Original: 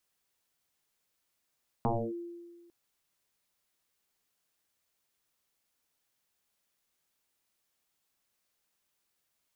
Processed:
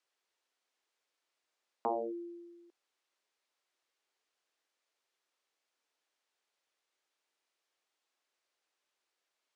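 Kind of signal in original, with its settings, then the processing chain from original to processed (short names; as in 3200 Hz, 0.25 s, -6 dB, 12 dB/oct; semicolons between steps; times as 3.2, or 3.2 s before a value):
FM tone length 0.85 s, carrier 344 Hz, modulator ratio 0.34, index 5.7, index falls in 0.28 s linear, decay 1.56 s, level -24 dB
HPF 320 Hz 24 dB/oct; air absorption 79 m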